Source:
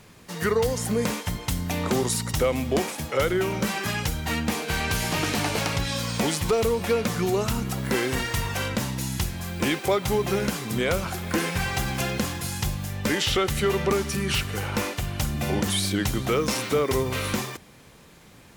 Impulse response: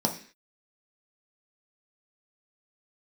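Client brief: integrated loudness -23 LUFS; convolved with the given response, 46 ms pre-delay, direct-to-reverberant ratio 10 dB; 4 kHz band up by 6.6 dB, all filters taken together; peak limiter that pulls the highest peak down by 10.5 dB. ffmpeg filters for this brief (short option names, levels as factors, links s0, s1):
-filter_complex "[0:a]equalizer=f=4000:t=o:g=8.5,alimiter=limit=0.133:level=0:latency=1,asplit=2[s0][s1];[1:a]atrim=start_sample=2205,adelay=46[s2];[s1][s2]afir=irnorm=-1:irlink=0,volume=0.106[s3];[s0][s3]amix=inputs=2:normalize=0,volume=1.41"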